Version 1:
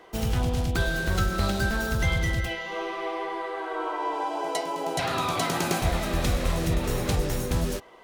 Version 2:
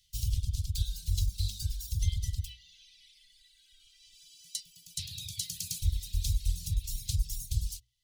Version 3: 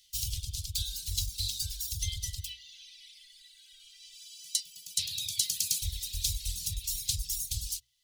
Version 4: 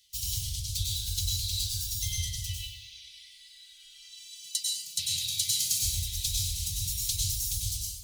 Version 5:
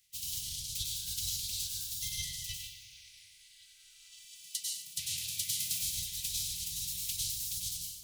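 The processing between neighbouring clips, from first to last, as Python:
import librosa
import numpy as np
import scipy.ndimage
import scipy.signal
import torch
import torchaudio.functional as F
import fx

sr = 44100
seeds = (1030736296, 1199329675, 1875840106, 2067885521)

y1 = scipy.signal.sosfilt(scipy.signal.cheby2(4, 70, [350.0, 1200.0], 'bandstop', fs=sr, output='sos'), x)
y1 = fx.hum_notches(y1, sr, base_hz=60, count=2)
y1 = fx.dereverb_blind(y1, sr, rt60_s=1.6)
y2 = fx.tilt_shelf(y1, sr, db=-7.5, hz=770.0)
y3 = fx.notch_comb(y2, sr, f0_hz=310.0)
y3 = fx.rev_plate(y3, sr, seeds[0], rt60_s=1.0, hf_ratio=0.7, predelay_ms=85, drr_db=-3.5)
y4 = fx.spec_clip(y3, sr, under_db=18)
y4 = fx.echo_feedback(y4, sr, ms=371, feedback_pct=45, wet_db=-23.5)
y4 = y4 * librosa.db_to_amplitude(-6.0)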